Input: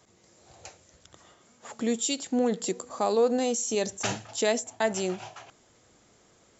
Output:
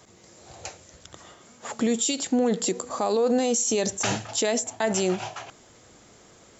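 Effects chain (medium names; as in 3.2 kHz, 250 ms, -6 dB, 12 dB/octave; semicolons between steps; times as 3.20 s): peak limiter -23 dBFS, peak gain reduction 9.5 dB; trim +8 dB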